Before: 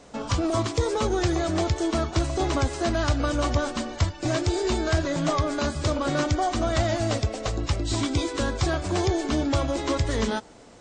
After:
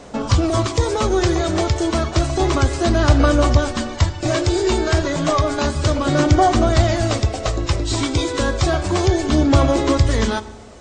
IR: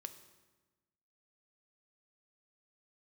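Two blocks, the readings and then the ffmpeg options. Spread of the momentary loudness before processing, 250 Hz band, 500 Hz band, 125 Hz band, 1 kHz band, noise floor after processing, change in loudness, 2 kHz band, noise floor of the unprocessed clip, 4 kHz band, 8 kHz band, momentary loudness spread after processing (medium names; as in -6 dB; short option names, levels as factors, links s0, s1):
3 LU, +7.0 dB, +7.0 dB, +8.5 dB, +7.5 dB, -33 dBFS, +7.5 dB, +6.5 dB, -47 dBFS, +6.5 dB, +6.5 dB, 6 LU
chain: -filter_complex "[0:a]flanger=delay=0:depth=2.2:regen=72:speed=0.31:shape=sinusoidal,asplit=2[s0][s1];[1:a]atrim=start_sample=2205[s2];[s1][s2]afir=irnorm=-1:irlink=0,volume=2.51[s3];[s0][s3]amix=inputs=2:normalize=0,volume=1.41"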